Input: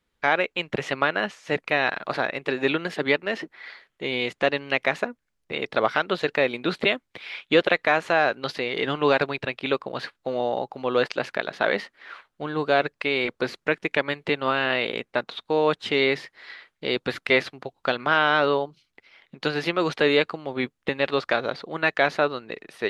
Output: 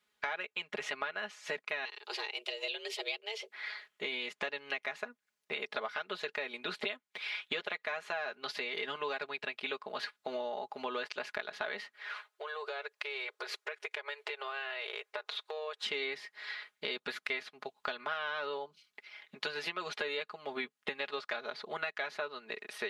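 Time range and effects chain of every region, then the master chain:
1.85–3.52 s: high-order bell 810 Hz -14.5 dB 2.6 oct + frequency shift +220 Hz
11.96–15.81 s: compression 5:1, threshold -32 dBFS + brick-wall FIR high-pass 370 Hz
whole clip: high-pass 920 Hz 6 dB/octave; comb 4.8 ms, depth 78%; compression 6:1, threshold -35 dBFS

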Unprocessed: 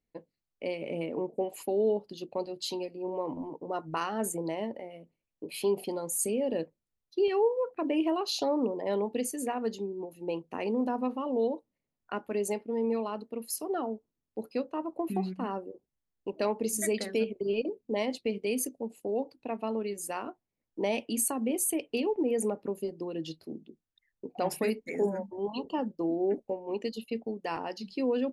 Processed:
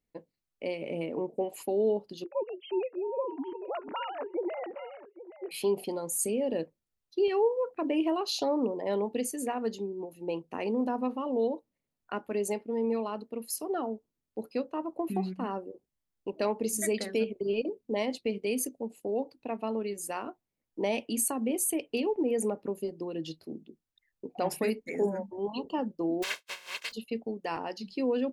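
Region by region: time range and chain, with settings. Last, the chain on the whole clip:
2.24–5.51 s: formants replaced by sine waves + delay 821 ms -15.5 dB
26.22–26.91 s: spectral contrast reduction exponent 0.19 + band-pass filter 2.4 kHz, Q 1.2 + comb 1.9 ms, depth 54%
whole clip: none

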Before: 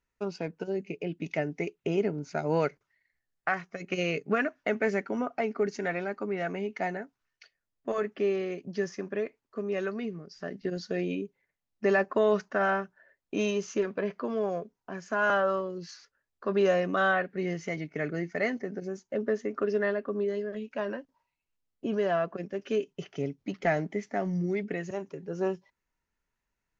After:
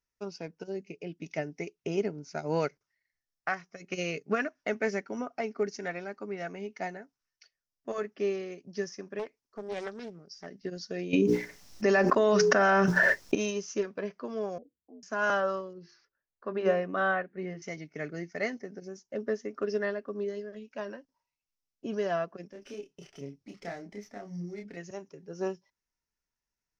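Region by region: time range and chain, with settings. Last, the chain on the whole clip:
9.19–10.46 s: treble shelf 5.7 kHz +4.5 dB + loudspeaker Doppler distortion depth 0.38 ms
11.13–13.35 s: hum notches 60/120/180/240/300/360/420/480 Hz + level flattener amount 100%
14.58–15.03 s: Gaussian low-pass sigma 19 samples + frequency shift +63 Hz
15.73–17.62 s: low-pass 2.3 kHz + hum notches 50/100/150/200/250/300/350/400 Hz
22.52–24.77 s: compression 2:1, threshold -38 dBFS + doubling 29 ms -3 dB + sliding maximum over 3 samples
whole clip: peaking EQ 5.5 kHz +13 dB 0.5 oct; upward expansion 1.5:1, over -37 dBFS

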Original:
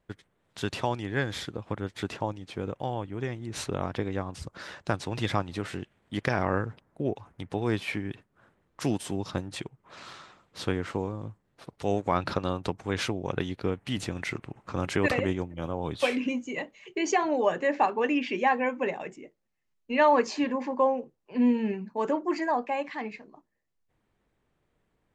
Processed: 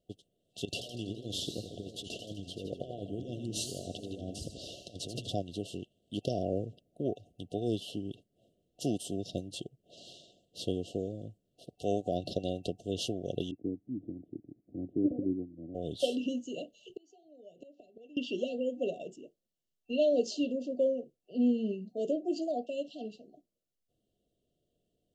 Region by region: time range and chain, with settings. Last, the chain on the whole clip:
0.65–5.30 s: compressor with a negative ratio -35 dBFS, ratio -0.5 + modulated delay 83 ms, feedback 61%, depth 218 cents, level -8.5 dB
13.51–15.75 s: cascade formant filter u + bass shelf 400 Hz +8.5 dB + three bands expanded up and down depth 40%
16.89–18.17 s: bass shelf 120 Hz +11 dB + inverted gate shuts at -22 dBFS, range -30 dB + three bands compressed up and down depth 70%
whole clip: FFT band-reject 740–2700 Hz; bass shelf 130 Hz -7.5 dB; trim -2.5 dB

